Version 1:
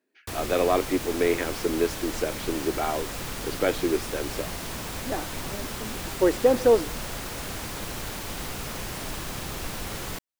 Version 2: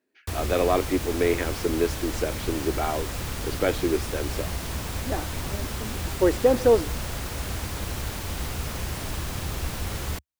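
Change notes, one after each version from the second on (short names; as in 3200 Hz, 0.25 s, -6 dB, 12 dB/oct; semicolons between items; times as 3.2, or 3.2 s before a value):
master: add bell 71 Hz +12 dB 1.2 oct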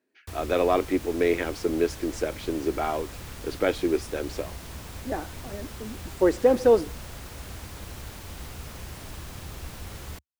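background -8.5 dB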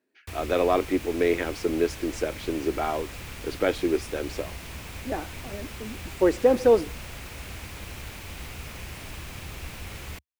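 background: add bell 2400 Hz +8 dB 0.71 oct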